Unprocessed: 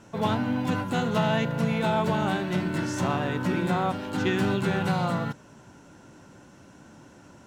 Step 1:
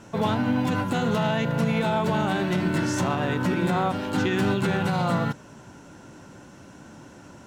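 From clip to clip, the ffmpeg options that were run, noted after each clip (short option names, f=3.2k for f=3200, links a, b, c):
-af "alimiter=limit=-19dB:level=0:latency=1:release=80,volume=4.5dB"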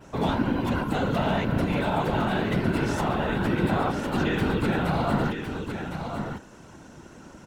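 -af "adynamicequalizer=threshold=0.00178:dfrequency=6600:dqfactor=1.6:tfrequency=6600:tqfactor=1.6:attack=5:release=100:ratio=0.375:range=3.5:mode=cutabove:tftype=bell,afftfilt=real='hypot(re,im)*cos(2*PI*random(0))':imag='hypot(re,im)*sin(2*PI*random(1))':win_size=512:overlap=0.75,aecho=1:1:1057:0.447,volume=4.5dB"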